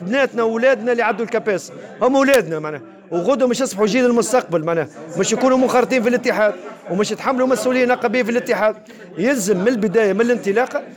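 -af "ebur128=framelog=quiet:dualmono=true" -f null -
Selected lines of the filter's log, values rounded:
Integrated loudness:
  I:         -14.5 LUFS
  Threshold: -24.7 LUFS
Loudness range:
  LRA:         1.5 LU
  Threshold: -34.8 LUFS
  LRA low:   -15.5 LUFS
  LRA high:  -14.0 LUFS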